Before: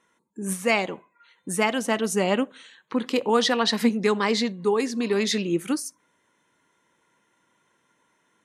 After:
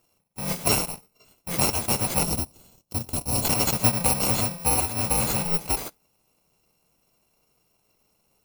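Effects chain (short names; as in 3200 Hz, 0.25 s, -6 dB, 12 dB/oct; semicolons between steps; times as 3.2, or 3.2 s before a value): FFT order left unsorted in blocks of 128 samples; in parallel at -3 dB: sample-and-hold 26×; 2.23–3.45 on the sum: EQ curve 140 Hz 0 dB, 2300 Hz -12 dB, 4000 Hz -5 dB; gain -2.5 dB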